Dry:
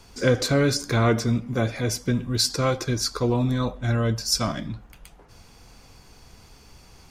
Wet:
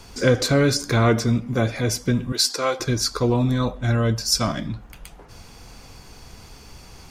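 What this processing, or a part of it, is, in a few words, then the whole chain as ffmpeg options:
parallel compression: -filter_complex "[0:a]asplit=2[s0][s1];[s1]acompressor=threshold=0.01:ratio=6,volume=0.631[s2];[s0][s2]amix=inputs=2:normalize=0,asettb=1/sr,asplit=3[s3][s4][s5];[s3]atrim=end=2.324[s6];[s4]atrim=start=2.32:end=2.8,asetpts=PTS-STARTPTS,afade=t=in:d=0.004:c=qsin,afade=t=out:st=0.476:d=0.004:c=qsin,highpass=420[s7];[s5]atrim=start=2.796[s8];[s6][s7]acrossfade=d=0.004:c1=hsin:c2=qsin[s9];[s9][s8]acrossfade=d=0.004:c1=qsin:c2=hsin,volume=1.26"

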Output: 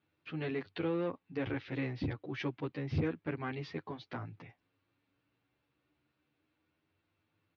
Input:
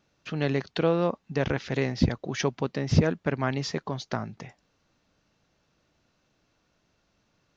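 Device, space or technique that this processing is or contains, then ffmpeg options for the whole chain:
barber-pole flanger into a guitar amplifier: -filter_complex "[0:a]asplit=2[s0][s1];[s1]adelay=9.8,afreqshift=0.29[s2];[s0][s2]amix=inputs=2:normalize=1,asoftclip=type=tanh:threshold=0.119,highpass=87,equalizer=f=97:t=q:w=4:g=9,equalizer=f=200:t=q:w=4:g=-8,equalizer=f=300:t=q:w=4:g=7,equalizer=f=630:t=q:w=4:g=-5,equalizer=f=2300:t=q:w=4:g=4,lowpass=f=3800:w=0.5412,lowpass=f=3800:w=1.3066,volume=0.473"

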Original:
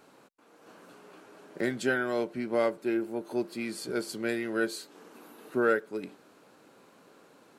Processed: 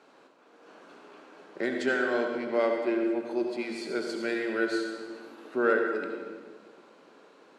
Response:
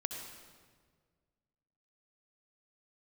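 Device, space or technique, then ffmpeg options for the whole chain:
supermarket ceiling speaker: -filter_complex "[0:a]highpass=260,lowpass=5300[s0];[1:a]atrim=start_sample=2205[s1];[s0][s1]afir=irnorm=-1:irlink=0,volume=1.19"

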